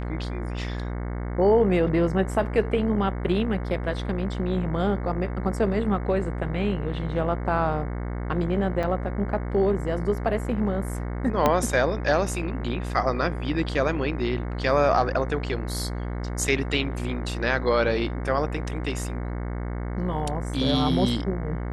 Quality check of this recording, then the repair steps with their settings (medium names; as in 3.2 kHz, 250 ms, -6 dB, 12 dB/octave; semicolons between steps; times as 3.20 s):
buzz 60 Hz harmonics 37 -30 dBFS
8.83–8.84 s: dropout 5.6 ms
11.46 s: pop -7 dBFS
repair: de-click; de-hum 60 Hz, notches 37; interpolate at 8.83 s, 5.6 ms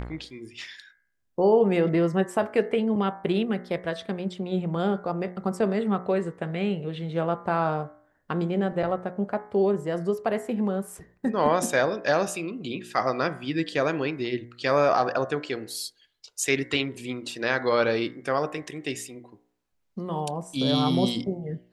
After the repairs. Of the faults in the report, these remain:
11.46 s: pop